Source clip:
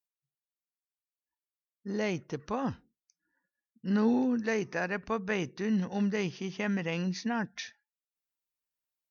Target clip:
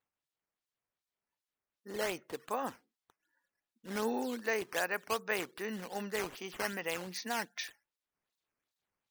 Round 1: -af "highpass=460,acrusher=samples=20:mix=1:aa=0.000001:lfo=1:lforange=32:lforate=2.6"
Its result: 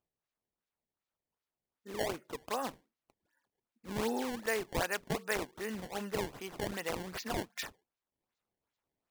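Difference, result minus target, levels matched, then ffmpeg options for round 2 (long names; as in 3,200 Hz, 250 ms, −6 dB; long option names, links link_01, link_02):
sample-and-hold swept by an LFO: distortion +7 dB
-af "highpass=460,acrusher=samples=7:mix=1:aa=0.000001:lfo=1:lforange=11.2:lforate=2.6"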